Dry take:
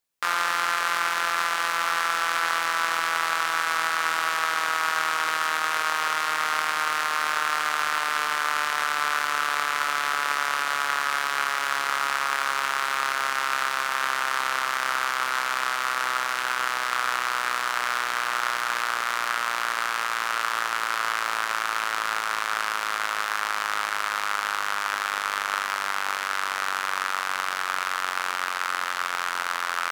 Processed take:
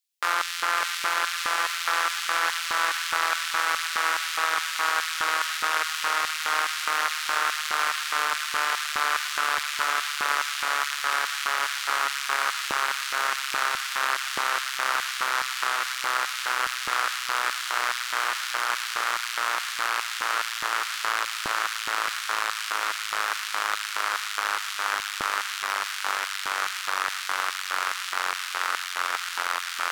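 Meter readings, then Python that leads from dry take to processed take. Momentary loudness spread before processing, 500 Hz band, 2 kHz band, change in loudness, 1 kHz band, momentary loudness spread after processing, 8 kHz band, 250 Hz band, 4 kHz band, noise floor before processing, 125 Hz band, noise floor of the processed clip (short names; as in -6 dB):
3 LU, -1.5 dB, -1.0 dB, -1.0 dB, -2.0 dB, 3 LU, +2.0 dB, -3.0 dB, +2.0 dB, -29 dBFS, n/a, -33 dBFS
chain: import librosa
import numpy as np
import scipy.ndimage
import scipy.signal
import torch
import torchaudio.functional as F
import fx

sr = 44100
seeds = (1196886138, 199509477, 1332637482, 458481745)

y = fx.filter_lfo_highpass(x, sr, shape='square', hz=2.4, low_hz=350.0, high_hz=3100.0, q=1.0)
y = fx.echo_wet_highpass(y, sr, ms=532, feedback_pct=61, hz=1700.0, wet_db=-5)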